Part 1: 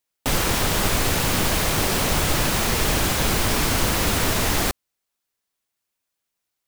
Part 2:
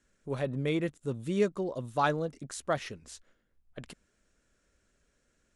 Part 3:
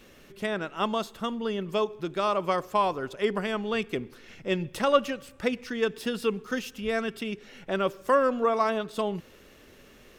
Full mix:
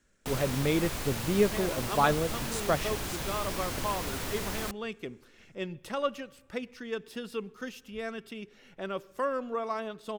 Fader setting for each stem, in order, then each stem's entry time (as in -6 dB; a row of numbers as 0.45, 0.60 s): -14.5, +2.5, -8.5 dB; 0.00, 0.00, 1.10 s